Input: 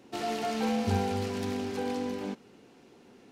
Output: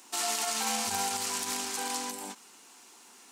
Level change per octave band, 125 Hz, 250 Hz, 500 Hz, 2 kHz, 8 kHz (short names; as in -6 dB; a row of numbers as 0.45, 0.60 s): -19.5, -11.5, -9.0, +3.5, +17.0 dB